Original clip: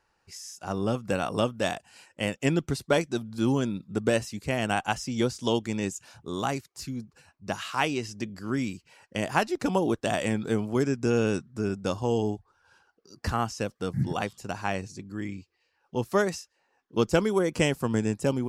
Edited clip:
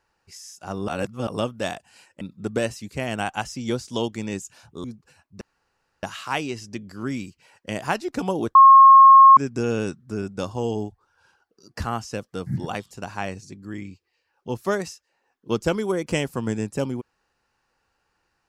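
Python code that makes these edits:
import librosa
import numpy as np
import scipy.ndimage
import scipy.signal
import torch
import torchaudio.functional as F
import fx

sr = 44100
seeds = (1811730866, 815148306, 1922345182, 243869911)

y = fx.edit(x, sr, fx.reverse_span(start_s=0.88, length_s=0.39),
    fx.cut(start_s=2.21, length_s=1.51),
    fx.cut(start_s=6.35, length_s=0.58),
    fx.insert_room_tone(at_s=7.5, length_s=0.62),
    fx.bleep(start_s=10.02, length_s=0.82, hz=1080.0, db=-6.0), tone=tone)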